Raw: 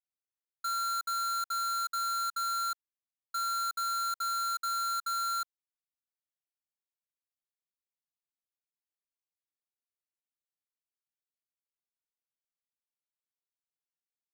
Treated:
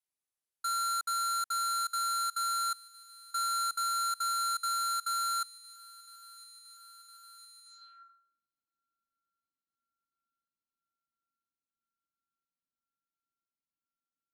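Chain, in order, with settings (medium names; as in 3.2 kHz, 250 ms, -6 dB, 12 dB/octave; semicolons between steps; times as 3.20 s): feedback echo behind a high-pass 1010 ms, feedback 80%, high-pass 2 kHz, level -19.5 dB; low-pass sweep 11 kHz -> 270 Hz, 7.63–8.38 s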